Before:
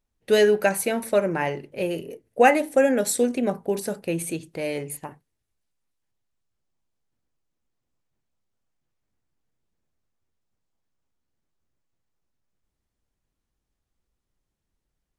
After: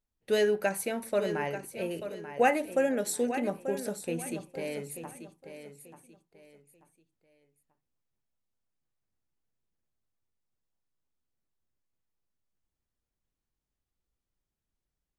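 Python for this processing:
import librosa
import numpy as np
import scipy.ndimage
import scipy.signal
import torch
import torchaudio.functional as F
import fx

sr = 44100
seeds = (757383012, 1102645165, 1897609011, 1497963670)

y = fx.echo_feedback(x, sr, ms=887, feedback_pct=30, wet_db=-10.5)
y = y * 10.0 ** (-8.0 / 20.0)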